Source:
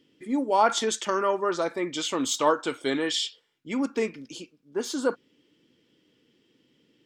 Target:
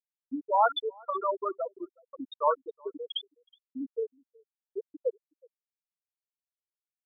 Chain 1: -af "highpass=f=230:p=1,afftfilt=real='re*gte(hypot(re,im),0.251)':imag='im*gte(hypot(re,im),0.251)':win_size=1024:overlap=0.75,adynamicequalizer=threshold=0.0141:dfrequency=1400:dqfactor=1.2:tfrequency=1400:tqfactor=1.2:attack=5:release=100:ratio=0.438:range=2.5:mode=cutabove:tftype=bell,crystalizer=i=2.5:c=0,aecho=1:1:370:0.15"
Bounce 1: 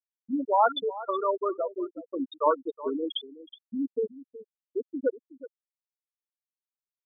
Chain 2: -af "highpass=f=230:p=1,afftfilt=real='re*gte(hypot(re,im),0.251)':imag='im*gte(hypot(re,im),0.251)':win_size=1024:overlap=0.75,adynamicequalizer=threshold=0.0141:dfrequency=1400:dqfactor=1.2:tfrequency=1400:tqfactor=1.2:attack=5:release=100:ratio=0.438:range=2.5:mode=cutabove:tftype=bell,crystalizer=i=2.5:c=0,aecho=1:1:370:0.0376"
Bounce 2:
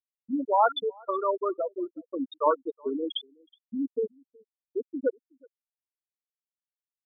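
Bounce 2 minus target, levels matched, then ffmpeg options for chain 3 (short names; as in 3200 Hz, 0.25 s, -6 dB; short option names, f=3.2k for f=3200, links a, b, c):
250 Hz band +6.0 dB
-af "highpass=f=580:p=1,afftfilt=real='re*gte(hypot(re,im),0.251)':imag='im*gte(hypot(re,im),0.251)':win_size=1024:overlap=0.75,adynamicequalizer=threshold=0.0141:dfrequency=1400:dqfactor=1.2:tfrequency=1400:tqfactor=1.2:attack=5:release=100:ratio=0.438:range=2.5:mode=cutabove:tftype=bell,crystalizer=i=2.5:c=0,aecho=1:1:370:0.0376"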